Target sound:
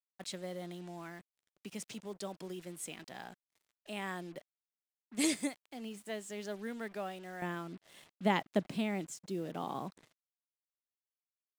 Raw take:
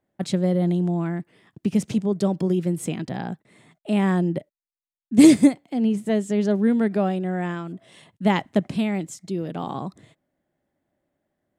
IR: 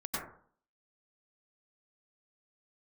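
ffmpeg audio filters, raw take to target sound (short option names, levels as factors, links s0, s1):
-af "asetnsamples=n=441:p=0,asendcmd='7.42 highpass f 280',highpass=f=1500:p=1,acrusher=bits=7:mix=0:aa=0.5,volume=0.422"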